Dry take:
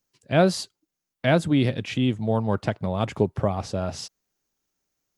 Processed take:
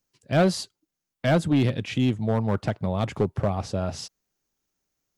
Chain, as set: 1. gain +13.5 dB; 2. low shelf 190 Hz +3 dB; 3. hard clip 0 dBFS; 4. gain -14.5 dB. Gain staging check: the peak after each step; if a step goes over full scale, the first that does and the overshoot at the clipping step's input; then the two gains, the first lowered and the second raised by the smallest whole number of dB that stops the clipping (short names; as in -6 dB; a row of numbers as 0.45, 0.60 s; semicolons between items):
+7.5, +7.5, 0.0, -14.5 dBFS; step 1, 7.5 dB; step 1 +5.5 dB, step 4 -6.5 dB